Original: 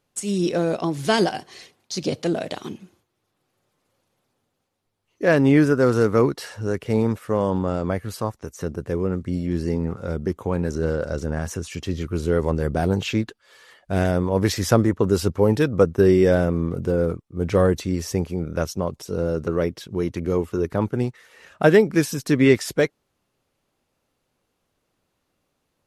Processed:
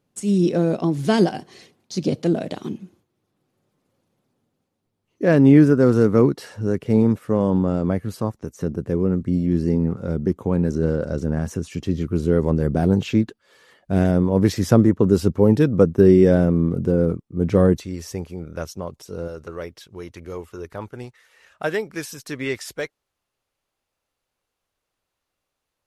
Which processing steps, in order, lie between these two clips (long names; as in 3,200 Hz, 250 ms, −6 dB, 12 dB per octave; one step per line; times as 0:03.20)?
parametric band 200 Hz +10.5 dB 2.5 octaves, from 0:17.77 −2 dB, from 0:19.28 −10 dB
level −4.5 dB